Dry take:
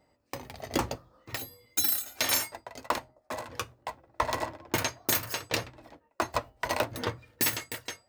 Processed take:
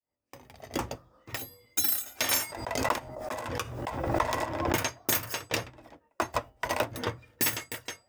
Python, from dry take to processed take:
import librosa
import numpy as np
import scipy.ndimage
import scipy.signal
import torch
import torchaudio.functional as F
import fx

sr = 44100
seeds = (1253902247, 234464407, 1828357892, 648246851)

y = fx.fade_in_head(x, sr, length_s=1.17)
y = fx.notch(y, sr, hz=4200.0, q=8.6)
y = fx.pre_swell(y, sr, db_per_s=41.0, at=(2.31, 4.77))